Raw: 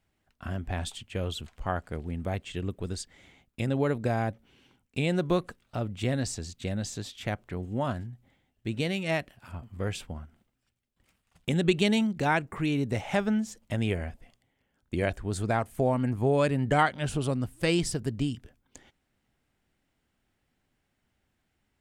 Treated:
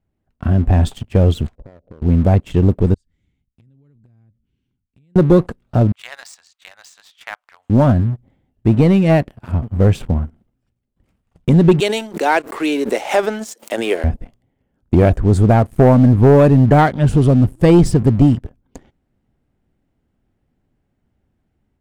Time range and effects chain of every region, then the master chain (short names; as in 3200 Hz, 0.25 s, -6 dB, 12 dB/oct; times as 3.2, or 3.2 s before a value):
1.55–2.02 ladder low-pass 610 Hz, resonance 65% + compressor 16:1, threshold -51 dBFS
2.94–5.16 passive tone stack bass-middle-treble 6-0-2 + compressor 12:1, threshold -59 dBFS
5.92–7.7 inverse Chebyshev high-pass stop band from 390 Hz, stop band 50 dB + high shelf 5400 Hz -5.5 dB
11.8–14.04 HPF 340 Hz 24 dB/oct + tilt +3 dB/oct + backwards sustainer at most 150 dB/s
whole clip: tilt shelf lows +9 dB; AGC gain up to 6 dB; sample leveller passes 2